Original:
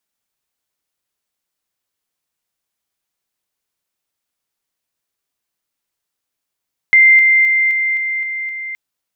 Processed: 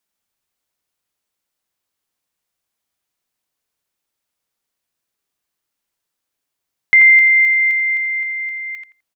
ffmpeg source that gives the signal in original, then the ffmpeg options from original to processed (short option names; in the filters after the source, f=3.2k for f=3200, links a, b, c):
-f lavfi -i "aevalsrc='pow(10,(-5-3*floor(t/0.26))/20)*sin(2*PI*2090*t)':d=1.82:s=44100"
-filter_complex "[0:a]asplit=2[a][b];[b]adelay=85,lowpass=f=2k:p=1,volume=-4dB,asplit=2[c][d];[d]adelay=85,lowpass=f=2k:p=1,volume=0.24,asplit=2[e][f];[f]adelay=85,lowpass=f=2k:p=1,volume=0.24[g];[a][c][e][g]amix=inputs=4:normalize=0"